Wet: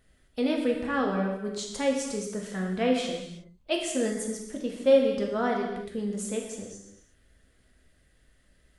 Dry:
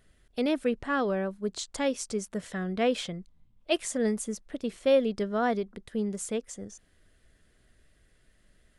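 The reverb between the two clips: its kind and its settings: non-linear reverb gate 0.39 s falling, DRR 0 dB; gain -2 dB

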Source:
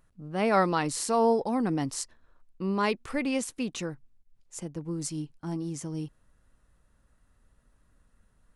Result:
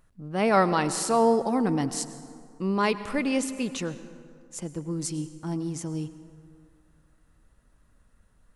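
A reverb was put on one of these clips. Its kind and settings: plate-style reverb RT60 2.3 s, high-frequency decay 0.5×, pre-delay 85 ms, DRR 13 dB; gain +2.5 dB

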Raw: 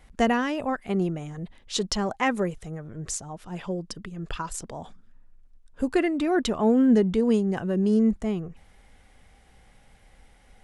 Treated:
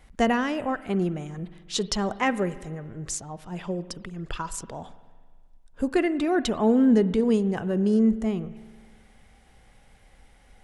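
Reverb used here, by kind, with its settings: spring tank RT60 1.6 s, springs 45 ms, chirp 75 ms, DRR 15 dB

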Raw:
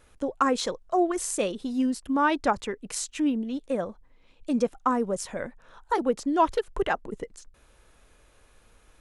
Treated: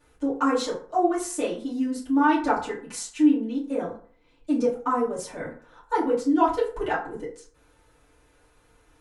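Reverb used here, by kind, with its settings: FDN reverb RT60 0.46 s, low-frequency decay 0.9×, high-frequency decay 0.55×, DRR -9 dB; gain -9.5 dB

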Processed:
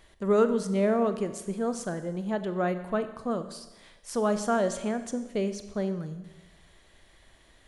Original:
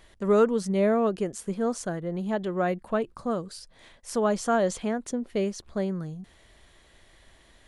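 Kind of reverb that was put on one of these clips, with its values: Schroeder reverb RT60 1.1 s, combs from 30 ms, DRR 10 dB; gain -2 dB

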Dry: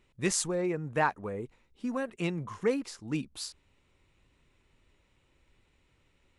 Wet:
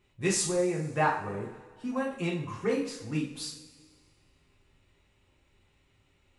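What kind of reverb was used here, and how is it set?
two-slope reverb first 0.44 s, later 1.8 s, from -16 dB, DRR -3.5 dB; gain -3.5 dB

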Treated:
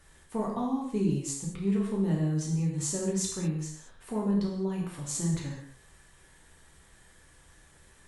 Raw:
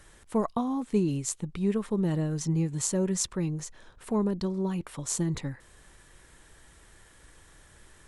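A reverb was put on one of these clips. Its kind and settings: non-linear reverb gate 0.25 s falling, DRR -3 dB; gain -7 dB

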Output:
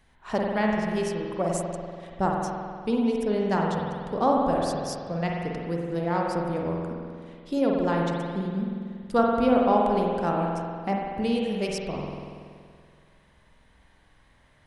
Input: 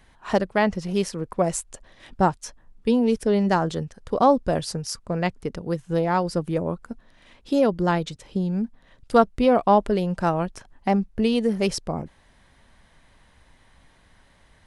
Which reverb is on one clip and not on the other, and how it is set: spring tank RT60 2.1 s, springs 47 ms, chirp 50 ms, DRR -1.5 dB; gain -6.5 dB

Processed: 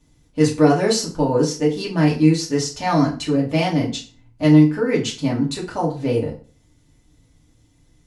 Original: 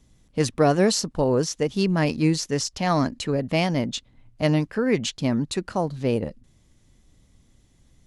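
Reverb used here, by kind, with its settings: FDN reverb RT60 0.39 s, low-frequency decay 1×, high-frequency decay 0.8×, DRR -4.5 dB; gain -3.5 dB

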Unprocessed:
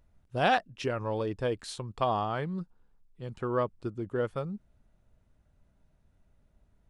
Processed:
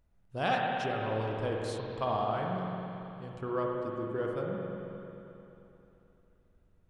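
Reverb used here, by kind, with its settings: spring tank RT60 3.2 s, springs 44/55 ms, chirp 70 ms, DRR -1.5 dB; gain -5.5 dB

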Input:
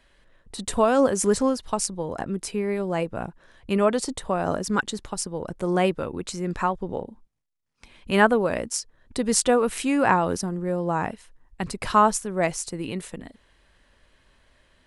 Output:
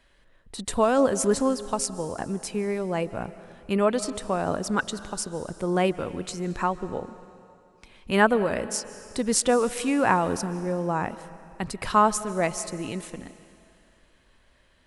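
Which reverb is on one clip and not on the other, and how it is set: digital reverb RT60 2.5 s, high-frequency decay 1×, pre-delay 0.105 s, DRR 15 dB; gain -1.5 dB

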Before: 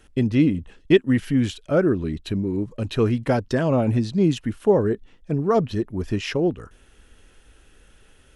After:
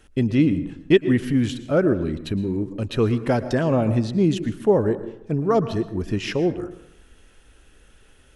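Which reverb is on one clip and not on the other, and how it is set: plate-style reverb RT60 0.8 s, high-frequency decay 0.5×, pre-delay 0.1 s, DRR 13 dB

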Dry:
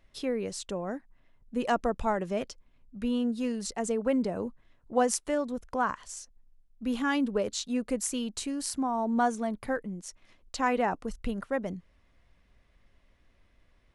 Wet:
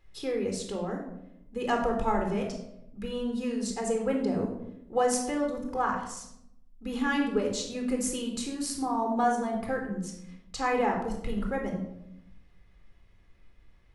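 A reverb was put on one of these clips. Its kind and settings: shoebox room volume 2000 m³, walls furnished, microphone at 4 m; gain -3 dB

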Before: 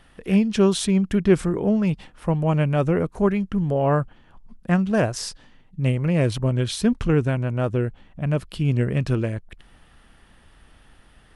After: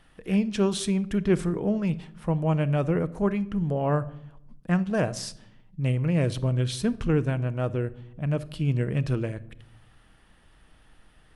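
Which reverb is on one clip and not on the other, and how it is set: shoebox room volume 1900 m³, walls furnished, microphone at 0.55 m; gain -5 dB

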